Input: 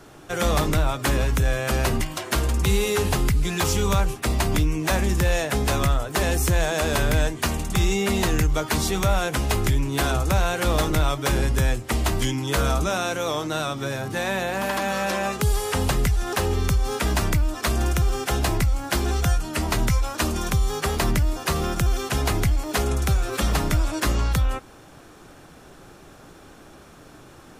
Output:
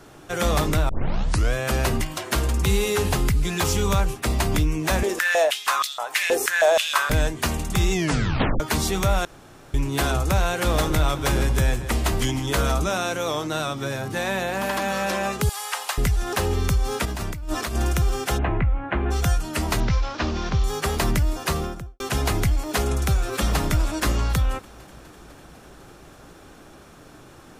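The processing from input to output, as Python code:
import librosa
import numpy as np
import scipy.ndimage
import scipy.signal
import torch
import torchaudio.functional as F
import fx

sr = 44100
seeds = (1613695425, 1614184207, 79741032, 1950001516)

y = fx.filter_held_highpass(x, sr, hz=6.3, low_hz=450.0, high_hz=4100.0, at=(5.03, 7.1))
y = fx.echo_split(y, sr, split_hz=1000.0, low_ms=230, high_ms=153, feedback_pct=52, wet_db=-13, at=(10.49, 12.72))
y = fx.highpass(y, sr, hz=750.0, slope=24, at=(15.49, 15.98))
y = fx.over_compress(y, sr, threshold_db=-28.0, ratio=-1.0, at=(17.05, 17.75))
y = fx.cheby2_lowpass(y, sr, hz=4800.0, order=4, stop_db=40, at=(18.37, 19.1), fade=0.02)
y = fx.cvsd(y, sr, bps=32000, at=(19.8, 20.64))
y = fx.studio_fade_out(y, sr, start_s=21.46, length_s=0.54)
y = fx.echo_throw(y, sr, start_s=23.21, length_s=0.4, ms=250, feedback_pct=80, wet_db=-17.5)
y = fx.edit(y, sr, fx.tape_start(start_s=0.89, length_s=0.65),
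    fx.tape_stop(start_s=7.92, length_s=0.68),
    fx.room_tone_fill(start_s=9.25, length_s=0.49), tone=tone)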